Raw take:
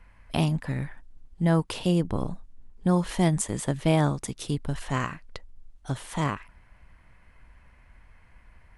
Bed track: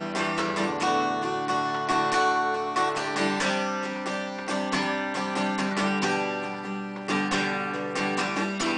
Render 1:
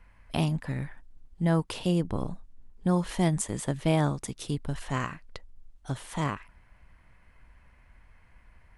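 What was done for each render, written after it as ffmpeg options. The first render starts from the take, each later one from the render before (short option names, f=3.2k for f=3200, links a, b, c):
-af "volume=-2.5dB"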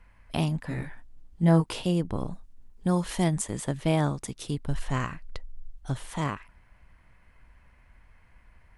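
-filter_complex "[0:a]asettb=1/sr,asplit=3[a][b][c];[a]atrim=end=0.674[d];[b]atrim=start=0.67:end=1.82,asetpts=PTS-STARTPTS,afade=t=in:d=0.004:c=qsin,afade=t=out:st=1.146:d=0.004:c=qsin,asplit=2[e][f];[f]adelay=18,volume=-2dB[g];[e][g]amix=inputs=2:normalize=0,atrim=end_sample=50715[h];[c]atrim=start=1.816[i];[d][h]acrossfade=d=0.004:c1=hsin:c2=qsin[j];[j][i]acrossfade=d=0.004:c1=qsin:c2=hsin,asettb=1/sr,asplit=3[k][l][m];[k]atrim=end=2.324[n];[l]atrim=start=2.32:end=3.24,asetpts=PTS-STARTPTS,afade=t=in:d=0.004:c=qsin,afade=t=out:st=0.916:d=0.004:c=qsin,highshelf=f=3.9k:g=5.5[o];[m]atrim=start=3.236[p];[n][o]acrossfade=d=0.004:c1=hsin:c2=qsin[q];[q][p]acrossfade=d=0.004:c1=qsin:c2=hsin,asettb=1/sr,asplit=3[r][s][t];[r]atrim=end=4.684[u];[s]atrim=start=4.68:end=6.11,asetpts=PTS-STARTPTS,afade=t=in:d=0.004:c=qsin,afade=t=out:st=1.426:d=0.004:c=qsin,lowshelf=f=79:g=10.5[v];[t]atrim=start=6.106[w];[u][v]acrossfade=d=0.004:c1=hsin:c2=qsin[x];[x][w]acrossfade=d=0.004:c1=qsin:c2=hsin"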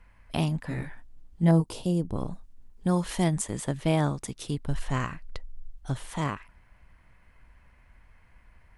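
-filter_complex "[0:a]asettb=1/sr,asplit=3[a][b][c];[a]atrim=end=1.514[d];[b]atrim=start=1.51:end=2.16,asetpts=PTS-STARTPTS,afade=t=in:d=0.004:c=qsin,afade=t=out:st=0.646:d=0.004:c=qsin,equalizer=f=1.9k:w=0.8:g=-14[e];[c]atrim=start=2.156[f];[d][e]acrossfade=d=0.004:c1=hsin:c2=qsin[g];[g][f]acrossfade=d=0.004:c1=qsin:c2=hsin"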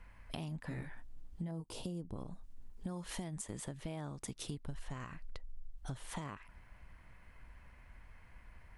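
-af "alimiter=limit=-20.5dB:level=0:latency=1:release=229,acompressor=threshold=-40dB:ratio=5"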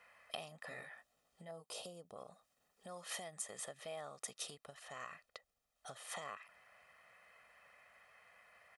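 -af "highpass=500,aecho=1:1:1.6:0.69"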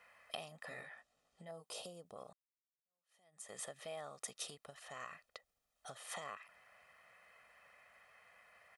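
-filter_complex "[0:a]asettb=1/sr,asplit=3[a][b][c];[a]atrim=end=0.824[d];[b]atrim=start=0.82:end=1.47,asetpts=PTS-STARTPTS,afade=t=in:d=0.004:c=qsin,afade=t=out:st=0.646:d=0.004:c=qsin,lowpass=8.6k[e];[c]atrim=start=1.466[f];[d][e]acrossfade=d=0.004:c1=hsin:c2=qsin[g];[g][f]acrossfade=d=0.004:c1=qsin:c2=hsin,asplit=2[h][i];[h]atrim=end=2.33,asetpts=PTS-STARTPTS,afade=t=out:st=2.326:d=0.004:c=hsin[j];[i]atrim=start=2.33,asetpts=PTS-STARTPTS,afade=t=in:d=1.19:c=exp[k];[j][k]concat=n=2:v=0:a=1"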